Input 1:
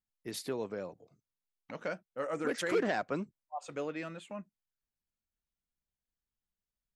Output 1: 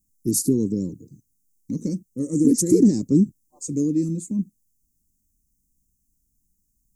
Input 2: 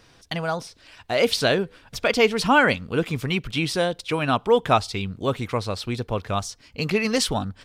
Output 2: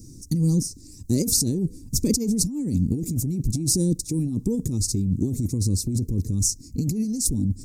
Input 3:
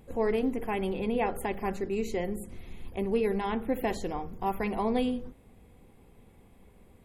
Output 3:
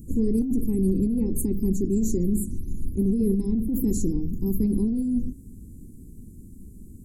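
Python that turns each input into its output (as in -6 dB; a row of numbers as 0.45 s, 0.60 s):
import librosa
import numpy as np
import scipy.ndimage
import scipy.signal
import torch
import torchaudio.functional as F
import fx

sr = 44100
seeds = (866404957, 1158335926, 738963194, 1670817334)

y = scipy.signal.sosfilt(scipy.signal.ellip(3, 1.0, 40, [300.0, 6600.0], 'bandstop', fs=sr, output='sos'), x)
y = fx.over_compress(y, sr, threshold_db=-34.0, ratio=-1.0)
y = y * 10.0 ** (-24 / 20.0) / np.sqrt(np.mean(np.square(y)))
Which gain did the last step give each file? +23.0 dB, +11.0 dB, +13.0 dB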